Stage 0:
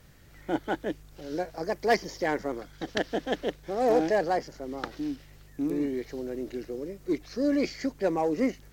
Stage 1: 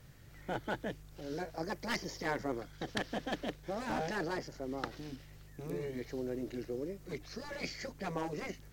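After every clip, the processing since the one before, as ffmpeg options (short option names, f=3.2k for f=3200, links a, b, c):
-af "equalizer=f=120:t=o:w=0.45:g=8,asoftclip=type=hard:threshold=-20dB,afftfilt=real='re*lt(hypot(re,im),0.251)':imag='im*lt(hypot(re,im),0.251)':win_size=1024:overlap=0.75,volume=-3.5dB"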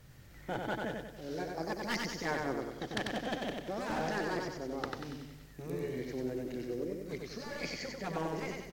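-af "aecho=1:1:94|188|282|376|470|564:0.668|0.321|0.154|0.0739|0.0355|0.017"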